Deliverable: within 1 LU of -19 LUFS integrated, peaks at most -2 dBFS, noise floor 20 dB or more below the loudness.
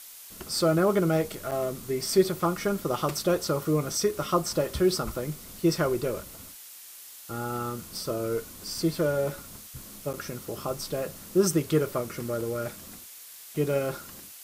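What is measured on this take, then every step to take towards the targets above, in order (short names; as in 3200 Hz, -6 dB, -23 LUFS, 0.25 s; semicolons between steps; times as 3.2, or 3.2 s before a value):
dropouts 2; longest dropout 6.9 ms; noise floor -46 dBFS; noise floor target -48 dBFS; loudness -28.0 LUFS; peak -10.0 dBFS; loudness target -19.0 LUFS
-> interpolate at 1.51/10.13, 6.9 ms; denoiser 6 dB, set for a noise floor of -46 dBFS; gain +9 dB; limiter -2 dBFS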